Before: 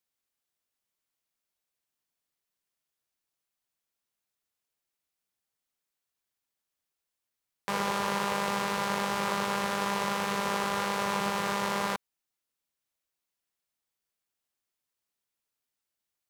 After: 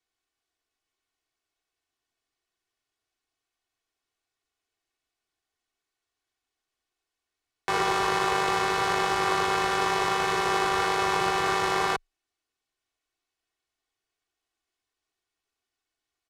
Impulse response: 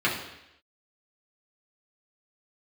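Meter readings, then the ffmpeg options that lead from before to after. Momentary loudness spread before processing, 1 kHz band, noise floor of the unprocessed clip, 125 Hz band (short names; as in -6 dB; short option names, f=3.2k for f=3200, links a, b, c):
2 LU, +5.5 dB, under -85 dBFS, +1.0 dB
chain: -af "afreqshift=-22,aecho=1:1:2.7:0.72,adynamicsmooth=sensitivity=4.5:basefreq=7.1k,volume=4dB"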